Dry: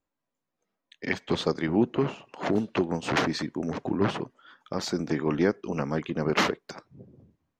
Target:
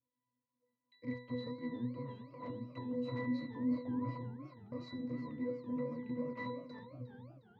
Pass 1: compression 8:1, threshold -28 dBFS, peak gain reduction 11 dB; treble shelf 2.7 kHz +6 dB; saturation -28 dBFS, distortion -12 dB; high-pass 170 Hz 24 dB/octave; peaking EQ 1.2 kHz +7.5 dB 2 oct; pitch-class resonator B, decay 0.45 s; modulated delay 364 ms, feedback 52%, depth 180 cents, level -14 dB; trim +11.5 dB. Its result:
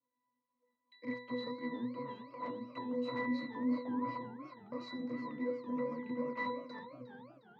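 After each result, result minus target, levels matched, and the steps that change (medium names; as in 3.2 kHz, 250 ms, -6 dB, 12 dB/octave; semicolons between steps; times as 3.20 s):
125 Hz band -11.5 dB; 1 kHz band +5.5 dB; 4 kHz band +3.0 dB
remove: high-pass 170 Hz 24 dB/octave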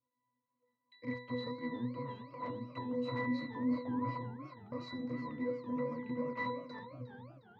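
1 kHz band +5.5 dB; 4 kHz band +3.0 dB
remove: peaking EQ 1.2 kHz +7.5 dB 2 oct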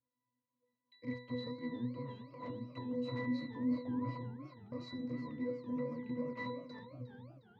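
4 kHz band +3.5 dB
remove: treble shelf 2.7 kHz +6 dB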